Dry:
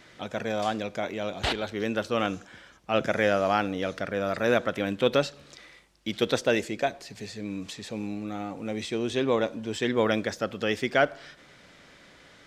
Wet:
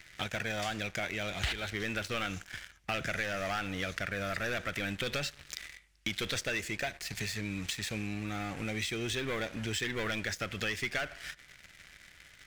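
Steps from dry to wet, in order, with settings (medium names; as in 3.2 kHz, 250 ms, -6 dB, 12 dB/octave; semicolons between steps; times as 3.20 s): bass shelf 100 Hz +7 dB; waveshaping leveller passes 3; graphic EQ 125/250/500/1000/2000/4000 Hz -4/-11/-10/-9/+5/-3 dB; compression 4:1, threshold -35 dBFS, peak gain reduction 16.5 dB; trim +1.5 dB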